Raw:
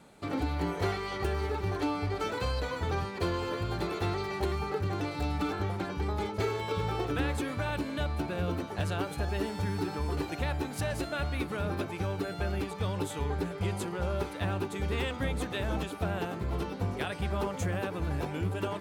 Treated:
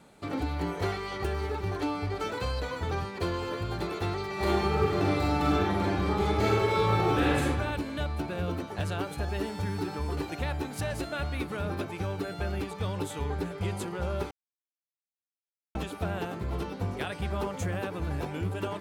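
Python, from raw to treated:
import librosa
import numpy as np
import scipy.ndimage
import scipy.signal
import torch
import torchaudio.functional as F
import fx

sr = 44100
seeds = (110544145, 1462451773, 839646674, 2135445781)

y = fx.reverb_throw(x, sr, start_s=4.33, length_s=3.09, rt60_s=1.2, drr_db=-5.5)
y = fx.edit(y, sr, fx.silence(start_s=14.31, length_s=1.44), tone=tone)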